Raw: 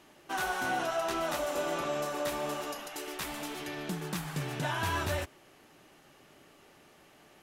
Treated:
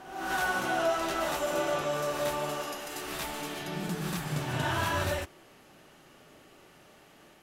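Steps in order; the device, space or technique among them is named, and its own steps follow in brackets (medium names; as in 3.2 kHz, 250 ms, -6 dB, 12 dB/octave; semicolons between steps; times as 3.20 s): reverse reverb (reverse; reverberation RT60 0.90 s, pre-delay 36 ms, DRR 1 dB; reverse)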